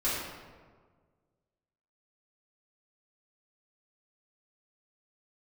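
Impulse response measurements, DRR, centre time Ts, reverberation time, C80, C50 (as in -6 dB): -10.5 dB, 89 ms, 1.6 s, 1.5 dB, -1.0 dB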